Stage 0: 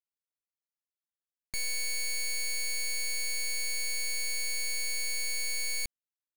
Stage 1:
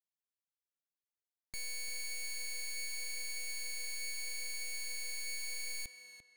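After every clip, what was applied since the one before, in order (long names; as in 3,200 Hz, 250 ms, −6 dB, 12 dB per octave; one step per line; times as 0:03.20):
tape delay 345 ms, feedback 38%, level −6 dB, low-pass 3,700 Hz
level −8.5 dB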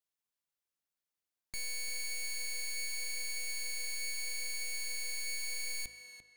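hum removal 53.67 Hz, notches 15
level +2.5 dB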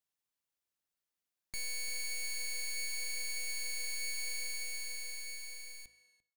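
fade-out on the ending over 2.04 s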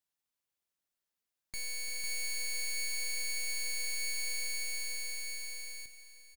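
repeating echo 500 ms, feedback 18%, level −10.5 dB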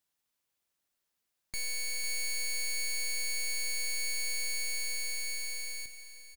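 soft clipping −36 dBFS, distortion −20 dB
level +5.5 dB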